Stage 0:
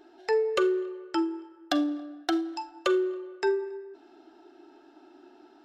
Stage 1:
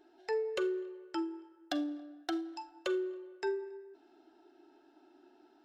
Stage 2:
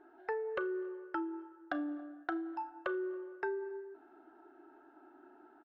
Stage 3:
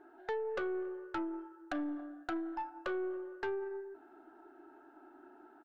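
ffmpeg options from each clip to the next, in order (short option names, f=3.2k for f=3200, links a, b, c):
-af "bandreject=f=1.2k:w=12,volume=-8.5dB"
-filter_complex "[0:a]lowpass=f=1.4k:t=q:w=2.6,asplit=2[a][b];[b]adelay=33,volume=-14dB[c];[a][c]amix=inputs=2:normalize=0,acompressor=threshold=-35dB:ratio=6,volume=1.5dB"
-af "aeval=exprs='(tanh(44.7*val(0)+0.3)-tanh(0.3))/44.7':c=same,volume=2.5dB"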